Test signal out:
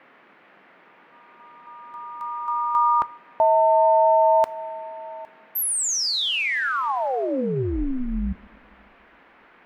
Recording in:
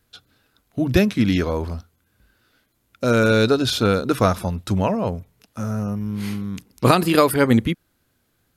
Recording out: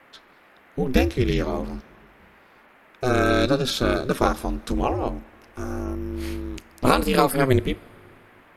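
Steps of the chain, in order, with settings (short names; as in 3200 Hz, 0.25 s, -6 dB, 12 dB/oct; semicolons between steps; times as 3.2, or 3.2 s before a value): two-slope reverb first 0.28 s, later 2.6 s, from -18 dB, DRR 15.5 dB; ring modulator 130 Hz; band noise 180–2200 Hz -54 dBFS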